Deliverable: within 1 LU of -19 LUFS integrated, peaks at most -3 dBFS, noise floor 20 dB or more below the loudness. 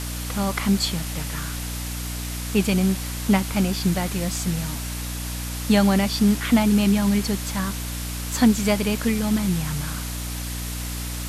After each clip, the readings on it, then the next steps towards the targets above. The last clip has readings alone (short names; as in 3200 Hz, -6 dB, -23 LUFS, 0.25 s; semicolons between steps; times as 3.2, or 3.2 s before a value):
hum 60 Hz; harmonics up to 300 Hz; hum level -29 dBFS; noise floor -30 dBFS; noise floor target -44 dBFS; loudness -23.5 LUFS; peak -6.5 dBFS; loudness target -19.0 LUFS
-> de-hum 60 Hz, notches 5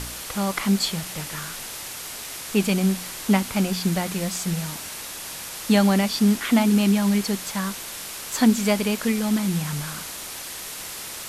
hum none; noise floor -35 dBFS; noise floor target -44 dBFS
-> denoiser 9 dB, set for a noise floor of -35 dBFS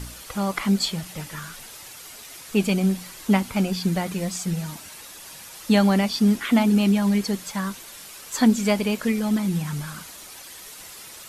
noise floor -42 dBFS; noise floor target -43 dBFS
-> denoiser 6 dB, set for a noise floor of -42 dBFS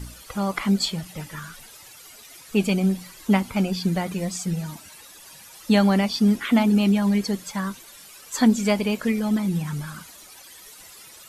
noise floor -46 dBFS; loudness -23.0 LUFS; peak -7.5 dBFS; loudness target -19.0 LUFS
-> gain +4 dB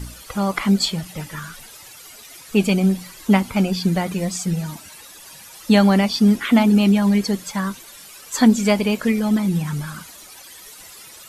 loudness -19.0 LUFS; peak -3.5 dBFS; noise floor -42 dBFS